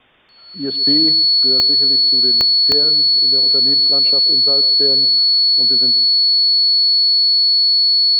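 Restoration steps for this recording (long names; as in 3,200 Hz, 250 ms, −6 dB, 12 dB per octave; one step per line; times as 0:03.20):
click removal
notch filter 4,400 Hz, Q 30
downward expander −8 dBFS, range −21 dB
echo removal 133 ms −15 dB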